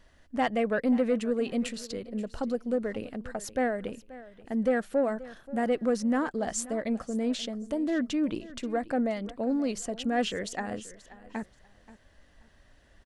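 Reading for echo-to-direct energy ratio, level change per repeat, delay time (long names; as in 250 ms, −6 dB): −17.5 dB, −12.5 dB, 531 ms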